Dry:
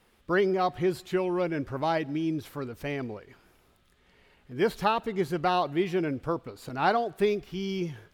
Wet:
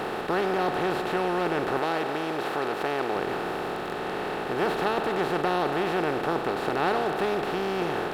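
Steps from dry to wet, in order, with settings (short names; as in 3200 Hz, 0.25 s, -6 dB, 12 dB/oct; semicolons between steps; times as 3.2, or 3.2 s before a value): per-bin compression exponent 0.2; 1.79–3.16 low shelf 180 Hz -9.5 dB; gain -7.5 dB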